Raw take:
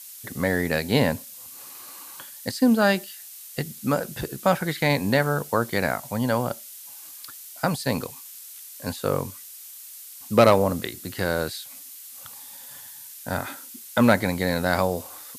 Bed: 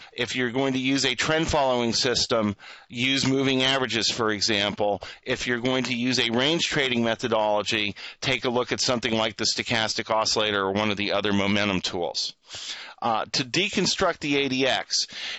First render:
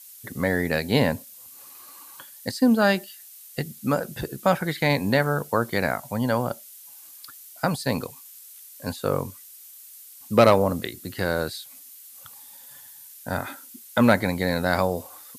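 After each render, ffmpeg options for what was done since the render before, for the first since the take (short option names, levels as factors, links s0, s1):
-af "afftdn=nr=6:nf=-43"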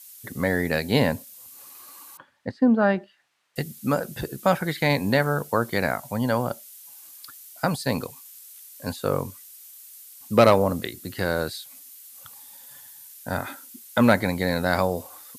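-filter_complex "[0:a]asettb=1/sr,asplit=3[s0][s1][s2];[s0]atrim=end=2.174[s3];[s1]atrim=start=2.17:end=3.56,asetpts=PTS-STARTPTS,afade=t=in:d=0.004:c=qsin,afade=t=out:st=1.386:d=0.004:c=qsin,lowpass=1600[s4];[s2]atrim=start=3.556[s5];[s3][s4]acrossfade=d=0.004:c1=hsin:c2=qsin[s6];[s6][s5]acrossfade=d=0.004:c1=qsin:c2=hsin"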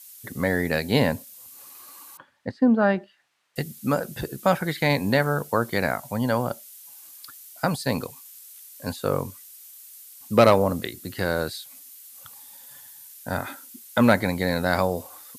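-af anull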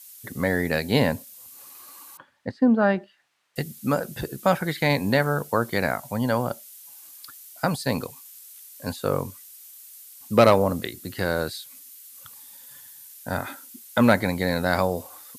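-filter_complex "[0:a]asettb=1/sr,asplit=3[s0][s1][s2];[s0]atrim=end=11.514[s3];[s1]atrim=start=11.51:end=13.1,asetpts=PTS-STARTPTS,afade=t=in:d=0.004:c=qsin,afade=t=out:st=1.586:d=0.004:c=qsin,equalizer=f=730:w=4.2:g=-13[s4];[s2]atrim=start=13.096[s5];[s3][s4]acrossfade=d=0.004:c1=hsin:c2=qsin[s6];[s6][s5]acrossfade=d=0.004:c1=qsin:c2=hsin"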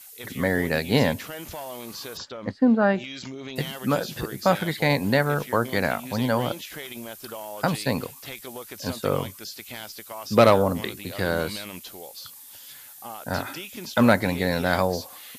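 -filter_complex "[1:a]volume=0.188[s0];[0:a][s0]amix=inputs=2:normalize=0"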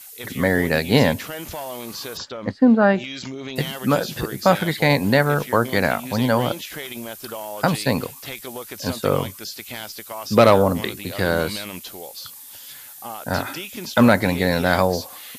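-af "volume=1.68,alimiter=limit=0.794:level=0:latency=1"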